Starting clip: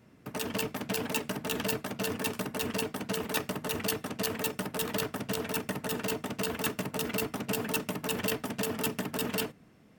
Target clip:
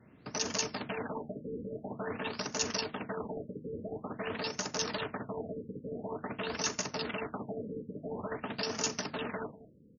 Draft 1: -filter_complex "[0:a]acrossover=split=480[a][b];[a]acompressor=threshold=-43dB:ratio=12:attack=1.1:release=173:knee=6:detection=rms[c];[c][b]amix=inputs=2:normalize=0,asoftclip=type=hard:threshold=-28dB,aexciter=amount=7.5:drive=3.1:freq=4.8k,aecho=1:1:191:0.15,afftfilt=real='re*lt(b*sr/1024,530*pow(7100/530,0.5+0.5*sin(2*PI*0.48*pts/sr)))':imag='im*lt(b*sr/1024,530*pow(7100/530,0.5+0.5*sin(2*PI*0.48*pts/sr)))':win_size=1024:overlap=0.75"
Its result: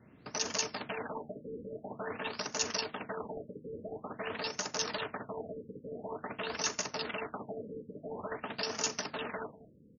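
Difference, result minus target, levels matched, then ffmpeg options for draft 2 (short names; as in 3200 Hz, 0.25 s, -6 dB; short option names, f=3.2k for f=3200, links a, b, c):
compressor: peak gain reduction +6.5 dB
-filter_complex "[0:a]acrossover=split=480[a][b];[a]acompressor=threshold=-36dB:ratio=12:attack=1.1:release=173:knee=6:detection=rms[c];[c][b]amix=inputs=2:normalize=0,asoftclip=type=hard:threshold=-28dB,aexciter=amount=7.5:drive=3.1:freq=4.8k,aecho=1:1:191:0.15,afftfilt=real='re*lt(b*sr/1024,530*pow(7100/530,0.5+0.5*sin(2*PI*0.48*pts/sr)))':imag='im*lt(b*sr/1024,530*pow(7100/530,0.5+0.5*sin(2*PI*0.48*pts/sr)))':win_size=1024:overlap=0.75"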